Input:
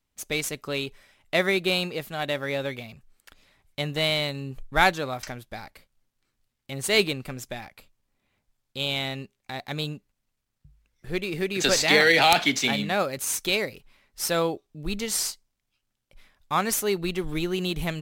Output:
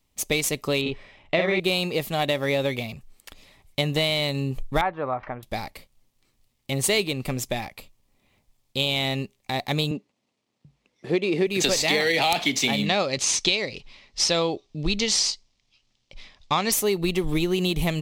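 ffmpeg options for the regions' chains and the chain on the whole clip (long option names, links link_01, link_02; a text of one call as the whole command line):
ffmpeg -i in.wav -filter_complex "[0:a]asettb=1/sr,asplit=3[link_01][link_02][link_03];[link_01]atrim=end=0.814[link_04];[link_02]atrim=start=0.81:end=1.6,asetpts=PTS-STARTPTS,afade=type=in:duration=0.004:curve=qsin,afade=type=out:start_time=0.786:duration=0.004:curve=qsin,lowpass=3100,asplit=2[link_05][link_06];[link_06]adelay=48,volume=-2dB[link_07];[link_05][link_07]amix=inputs=2:normalize=0,atrim=end_sample=34839[link_08];[link_03]atrim=start=1.596[link_09];[link_04][link_08]acrossfade=duration=0.004:curve1=hsin:curve2=qsin[link_10];[link_10][link_09]acrossfade=duration=0.004:curve1=qsin:curve2=hsin,asettb=1/sr,asplit=3[link_11][link_12][link_13];[link_11]atrim=end=4.814[link_14];[link_12]atrim=start=4.81:end=5.43,asetpts=PTS-STARTPTS,afade=type=in:duration=0.004:curve=qsin,afade=type=out:start_time=0.616:duration=0.004:curve=qsin,lowpass=frequency=1400:width=0.5412,lowpass=frequency=1400:width=1.3066,tiltshelf=frequency=910:gain=-9[link_15];[link_13]atrim=start=5.426[link_16];[link_14][link_15]acrossfade=duration=0.004:curve1=hsin:curve2=qsin[link_17];[link_17][link_16]acrossfade=duration=0.004:curve1=qsin:curve2=hsin,asettb=1/sr,asplit=3[link_18][link_19][link_20];[link_18]atrim=end=9.914[link_21];[link_19]atrim=start=9.91:end=11.47,asetpts=PTS-STARTPTS,afade=type=in:duration=0.004:curve=qsin,afade=type=out:start_time=1.556:duration=0.004:curve=qsin,highpass=220,lowpass=5700,equalizer=frequency=310:width_type=o:width=2.9:gain=5.5[link_22];[link_20]atrim=start=11.466[link_23];[link_21][link_22]acrossfade=duration=0.004:curve1=hsin:curve2=qsin[link_24];[link_24][link_23]acrossfade=duration=0.004:curve1=qsin:curve2=hsin,asettb=1/sr,asplit=3[link_25][link_26][link_27];[link_25]atrim=end=12.864[link_28];[link_26]atrim=start=12.86:end=16.72,asetpts=PTS-STARTPTS,afade=type=in:duration=0.004:curve=qsin,afade=type=out:start_time=3.856:duration=0.004:curve=qsin,lowpass=frequency=5500:width=0.5412,lowpass=frequency=5500:width=1.3066,highshelf=frequency=3200:gain=12[link_29];[link_27]atrim=start=16.716[link_30];[link_28][link_29]acrossfade=duration=0.004:curve1=hsin:curve2=qsin[link_31];[link_31][link_30]acrossfade=duration=0.004:curve1=qsin:curve2=hsin,equalizer=frequency=1500:width=3.6:gain=-10.5,acompressor=threshold=-28dB:ratio=6,volume=8.5dB" out.wav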